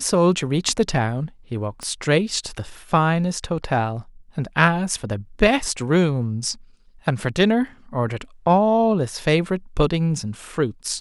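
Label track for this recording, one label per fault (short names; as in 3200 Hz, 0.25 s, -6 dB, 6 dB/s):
1.830000	1.830000	pop -18 dBFS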